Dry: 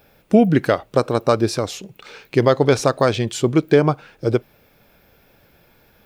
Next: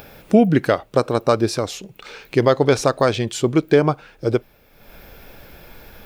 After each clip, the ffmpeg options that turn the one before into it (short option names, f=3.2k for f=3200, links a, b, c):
-af "acompressor=mode=upward:threshold=-32dB:ratio=2.5,asubboost=boost=3:cutoff=58"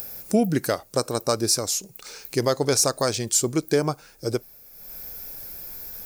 -af "aexciter=amount=6.4:drive=7:freq=4.7k,volume=-7dB"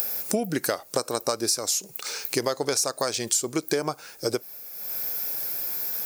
-af "highpass=f=460:p=1,acompressor=threshold=-30dB:ratio=6,volume=8dB"